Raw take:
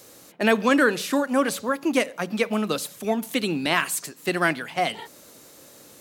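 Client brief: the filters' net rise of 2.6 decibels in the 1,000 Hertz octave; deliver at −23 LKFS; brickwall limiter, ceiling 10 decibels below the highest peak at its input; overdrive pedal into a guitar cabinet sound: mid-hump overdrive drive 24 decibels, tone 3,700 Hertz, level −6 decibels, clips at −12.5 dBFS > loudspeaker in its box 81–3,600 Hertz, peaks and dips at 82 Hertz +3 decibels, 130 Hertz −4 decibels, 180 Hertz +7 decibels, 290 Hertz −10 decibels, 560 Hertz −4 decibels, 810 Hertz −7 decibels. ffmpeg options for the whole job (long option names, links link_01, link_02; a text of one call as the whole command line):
ffmpeg -i in.wav -filter_complex "[0:a]equalizer=frequency=1000:width_type=o:gain=6.5,alimiter=limit=-12.5dB:level=0:latency=1,asplit=2[link_01][link_02];[link_02]highpass=frequency=720:poles=1,volume=24dB,asoftclip=type=tanh:threshold=-12.5dB[link_03];[link_01][link_03]amix=inputs=2:normalize=0,lowpass=frequency=3700:poles=1,volume=-6dB,highpass=81,equalizer=frequency=82:width_type=q:width=4:gain=3,equalizer=frequency=130:width_type=q:width=4:gain=-4,equalizer=frequency=180:width_type=q:width=4:gain=7,equalizer=frequency=290:width_type=q:width=4:gain=-10,equalizer=frequency=560:width_type=q:width=4:gain=-4,equalizer=frequency=810:width_type=q:width=4:gain=-7,lowpass=frequency=3600:width=0.5412,lowpass=frequency=3600:width=1.3066,volume=-0.5dB" out.wav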